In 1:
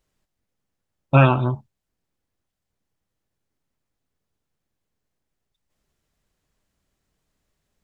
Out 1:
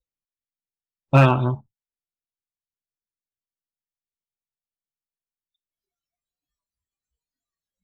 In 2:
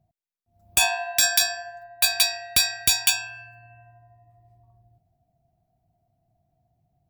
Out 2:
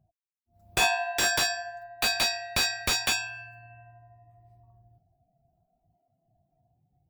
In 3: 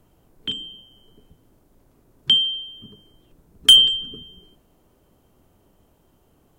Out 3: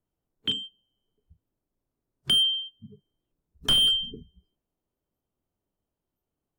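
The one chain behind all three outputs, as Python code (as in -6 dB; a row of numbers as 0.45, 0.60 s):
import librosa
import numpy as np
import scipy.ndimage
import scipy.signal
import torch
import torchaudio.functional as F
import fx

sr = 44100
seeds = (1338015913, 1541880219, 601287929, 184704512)

y = fx.noise_reduce_blind(x, sr, reduce_db=26)
y = fx.slew_limit(y, sr, full_power_hz=340.0)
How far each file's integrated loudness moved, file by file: 0.0, -5.5, -7.5 LU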